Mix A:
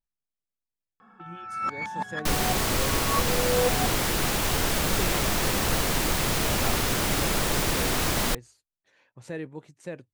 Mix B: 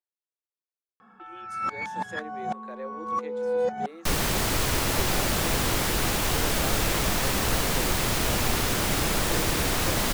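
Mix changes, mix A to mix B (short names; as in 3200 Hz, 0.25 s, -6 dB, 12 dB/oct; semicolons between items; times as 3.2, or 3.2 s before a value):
speech: add steep high-pass 310 Hz 96 dB/oct; second sound: entry +1.80 s; master: remove notches 50/100 Hz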